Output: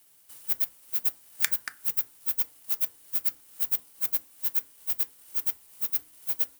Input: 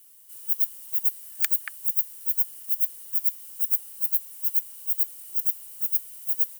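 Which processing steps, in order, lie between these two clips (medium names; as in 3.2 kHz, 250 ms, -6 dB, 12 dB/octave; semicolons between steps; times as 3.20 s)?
square wave that keeps the level; transient shaper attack +6 dB, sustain -6 dB; FDN reverb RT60 0.36 s, low-frequency decay 1.25×, high-frequency decay 0.45×, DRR 10.5 dB; trim -8 dB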